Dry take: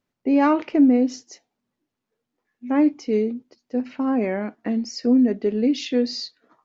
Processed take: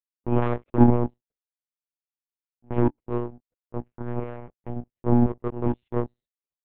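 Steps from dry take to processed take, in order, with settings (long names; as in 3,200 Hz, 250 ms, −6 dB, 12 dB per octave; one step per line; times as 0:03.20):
tilt shelving filter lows +9 dB, about 1,300 Hz
power curve on the samples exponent 2
one-pitch LPC vocoder at 8 kHz 120 Hz
level −5.5 dB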